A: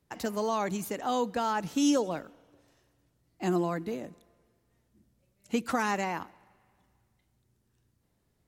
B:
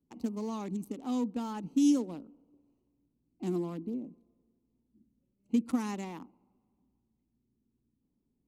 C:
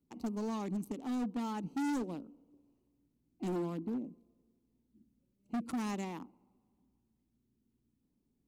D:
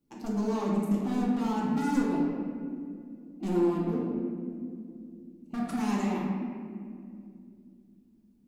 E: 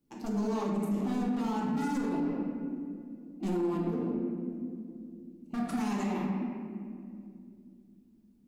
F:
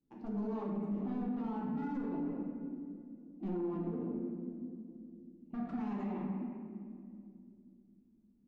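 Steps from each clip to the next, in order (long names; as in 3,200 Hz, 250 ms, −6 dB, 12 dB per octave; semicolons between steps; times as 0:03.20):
adaptive Wiener filter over 25 samples; graphic EQ with 15 bands 100 Hz −8 dB, 250 Hz +12 dB, 630 Hz −9 dB, 1,600 Hz −10 dB, 10,000 Hz +5 dB; level −6.5 dB
hard clipping −32 dBFS, distortion −5 dB
convolution reverb RT60 2.4 s, pre-delay 4 ms, DRR −5.5 dB; level +1 dB
brickwall limiter −23.5 dBFS, peak gain reduction 8 dB
head-to-tape spacing loss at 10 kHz 39 dB; level −5 dB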